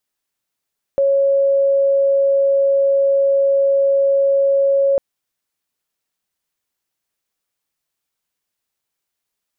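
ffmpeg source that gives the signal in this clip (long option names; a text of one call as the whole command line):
ffmpeg -f lavfi -i "sine=frequency=552:duration=4:sample_rate=44100,volume=6.56dB" out.wav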